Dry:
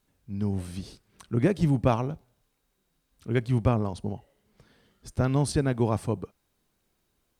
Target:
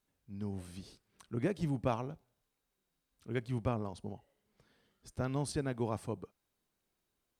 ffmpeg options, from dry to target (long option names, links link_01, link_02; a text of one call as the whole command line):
ffmpeg -i in.wav -af "lowshelf=frequency=200:gain=-5,volume=-8.5dB" out.wav